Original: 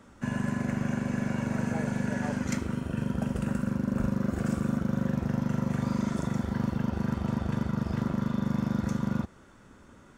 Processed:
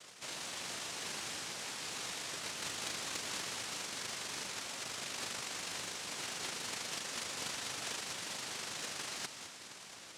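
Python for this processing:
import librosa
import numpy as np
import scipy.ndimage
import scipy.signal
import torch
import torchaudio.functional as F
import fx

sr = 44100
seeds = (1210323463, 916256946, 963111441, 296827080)

y = np.r_[np.sort(x[:len(x) // 64 * 64].reshape(-1, 64), axis=1).ravel(), x[len(x) // 64 * 64:]]
y = fx.peak_eq(y, sr, hz=650.0, db=-14.5, octaves=0.22)
y = 10.0 ** (-30.5 / 20.0) * np.tanh(y / 10.0 ** (-30.5 / 20.0))
y = scipy.signal.sosfilt(scipy.signal.butter(2, 150.0, 'highpass', fs=sr, output='sos'), y)
y = fx.low_shelf(y, sr, hz=280.0, db=-9.0)
y = fx.over_compress(y, sr, threshold_db=-44.0, ratio=-1.0)
y = fx.echo_feedback(y, sr, ms=209, feedback_pct=51, wet_db=-11)
y = fx.noise_vocoder(y, sr, seeds[0], bands=1)
y = fx.doppler_dist(y, sr, depth_ms=0.26)
y = y * librosa.db_to_amplitude(1.0)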